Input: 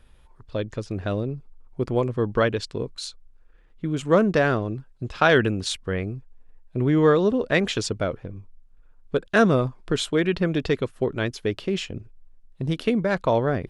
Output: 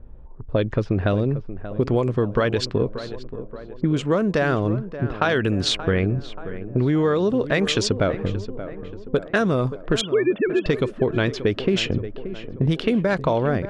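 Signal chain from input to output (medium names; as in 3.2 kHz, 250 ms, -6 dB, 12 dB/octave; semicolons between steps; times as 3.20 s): 10.01–10.66 s: formants replaced by sine waves; level-controlled noise filter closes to 530 Hz, open at -19 dBFS; gain riding within 5 dB 0.5 s; in parallel at +2 dB: peak limiter -17 dBFS, peak gain reduction 10 dB; on the sum: compression, threshold -16 dBFS, peak gain reduction 6 dB; on a send: tape echo 580 ms, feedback 64%, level -11 dB, low-pass 1.5 kHz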